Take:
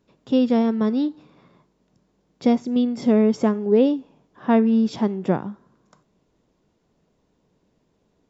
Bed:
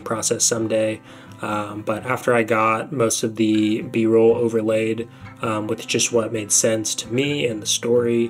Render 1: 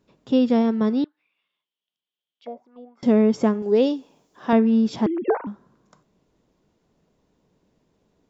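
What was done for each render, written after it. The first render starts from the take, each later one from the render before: 1.04–3.03 auto-wah 590–3200 Hz, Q 8.7, down, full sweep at -15 dBFS; 3.62–4.53 tone controls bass -8 dB, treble +13 dB; 5.06–5.47 sine-wave speech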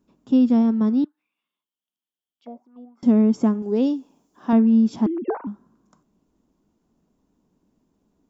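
graphic EQ 125/250/500/2000/4000 Hz -7/+6/-8/-8/-7 dB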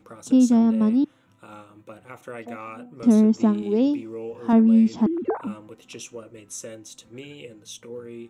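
add bed -19.5 dB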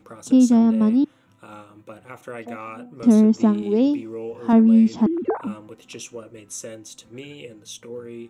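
gain +2 dB

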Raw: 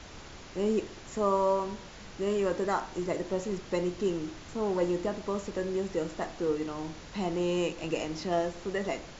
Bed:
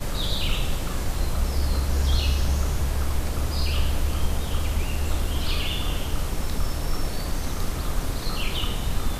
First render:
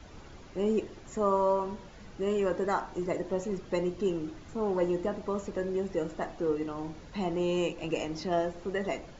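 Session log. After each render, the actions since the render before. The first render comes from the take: denoiser 9 dB, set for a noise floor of -47 dBFS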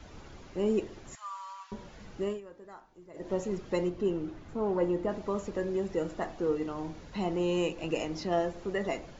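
1.15–1.72 Bessel high-pass 1900 Hz, order 8; 2.22–3.32 dip -20 dB, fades 0.19 s; 3.89–5.09 high shelf 3800 Hz -10.5 dB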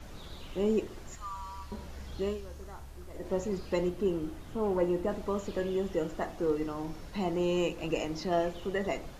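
add bed -23 dB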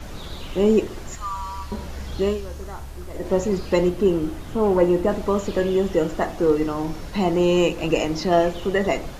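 gain +11 dB

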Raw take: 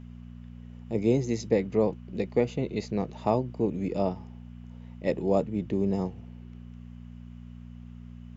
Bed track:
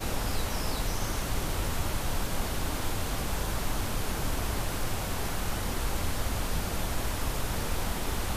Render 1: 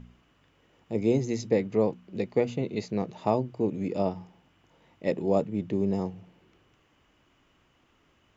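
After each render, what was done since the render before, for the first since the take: de-hum 60 Hz, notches 4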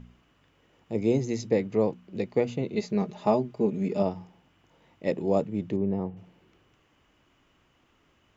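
2.75–4.03 comb 4.9 ms; 5.76–6.17 air absorption 480 m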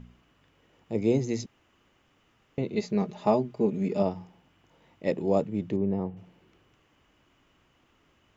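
1.46–2.58 room tone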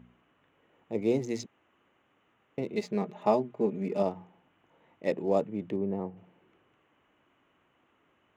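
Wiener smoothing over 9 samples; HPF 300 Hz 6 dB/oct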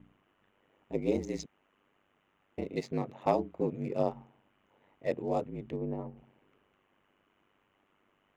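ring modulator 49 Hz; overloaded stage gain 15 dB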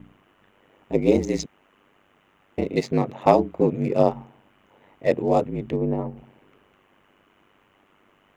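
gain +11.5 dB

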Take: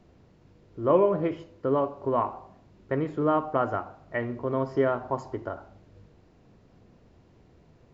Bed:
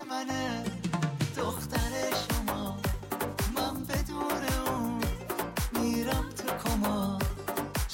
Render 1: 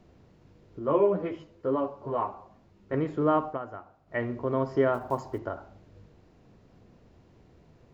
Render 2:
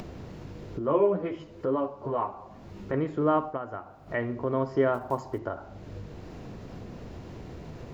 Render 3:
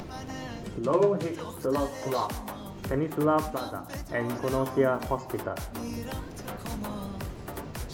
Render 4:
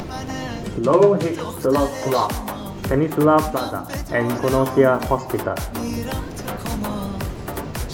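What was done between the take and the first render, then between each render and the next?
0.79–2.94 ensemble effect; 3.46–4.19 dip -12 dB, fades 0.13 s; 4.94–5.39 block floating point 7-bit
upward compressor, threshold -27 dBFS
add bed -7 dB
gain +9.5 dB; limiter -3 dBFS, peak gain reduction 1 dB

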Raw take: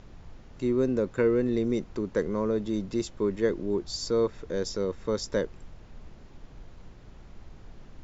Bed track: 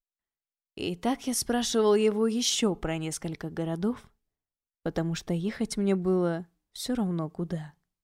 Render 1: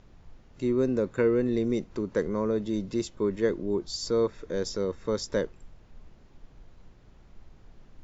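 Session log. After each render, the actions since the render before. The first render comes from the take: noise print and reduce 6 dB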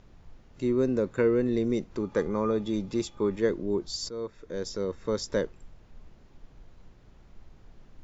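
2–3.39 small resonant body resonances 840/1200/2400/3400 Hz, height 16 dB, ringing for 0.1 s; 4.09–5.38 fade in equal-power, from -14 dB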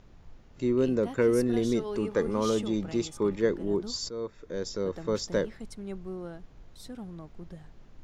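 add bed track -13 dB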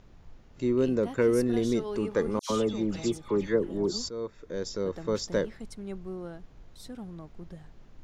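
2.39–4.08 dispersion lows, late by 0.109 s, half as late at 2000 Hz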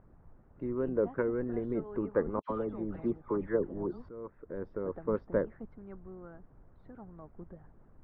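harmonic-percussive split harmonic -10 dB; inverse Chebyshev low-pass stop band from 8100 Hz, stop band 80 dB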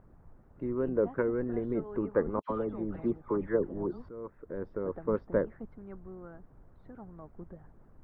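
gain +1.5 dB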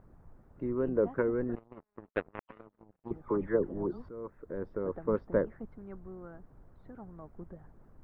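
1.55–3.11 power-law curve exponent 3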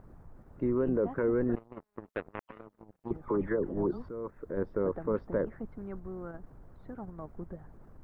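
in parallel at +1 dB: level quantiser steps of 12 dB; on the sum: limiter -20.5 dBFS, peak gain reduction 11 dB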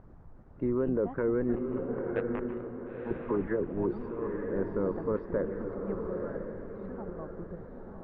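air absorption 120 m; on a send: diffused feedback echo 0.955 s, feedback 40%, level -4 dB

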